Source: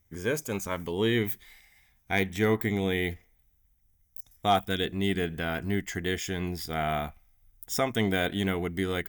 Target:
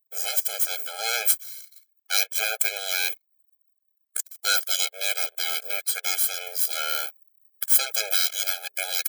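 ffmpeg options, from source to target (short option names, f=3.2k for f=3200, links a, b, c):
-filter_complex "[0:a]asettb=1/sr,asplit=3[a][b][c];[a]atrim=end=8.144[d];[b]atrim=start=8.14:end=8.78,asetpts=PTS-STARTPTS,afade=t=in:d=0.004:c=qsin,afade=t=out:st=0.636:d=0.004:c=qsin,lowshelf=f=390:g=-9[e];[c]atrim=start=8.776[f];[d][e]acrossfade=d=0.004:c1=hsin:c2=qsin[g];[g][f]acrossfade=d=0.004:c1=qsin:c2=hsin,aeval=exprs='abs(val(0))':c=same,equalizer=f=210:t=o:w=2.6:g=-10,asplit=2[h][i];[i]acompressor=threshold=-41dB:ratio=6,volume=-3dB[j];[h][j]amix=inputs=2:normalize=0,crystalizer=i=7.5:c=0,anlmdn=1,afftfilt=real='re*eq(mod(floor(b*sr/1024/430),2),1)':imag='im*eq(mod(floor(b*sr/1024/430),2),1)':win_size=1024:overlap=0.75"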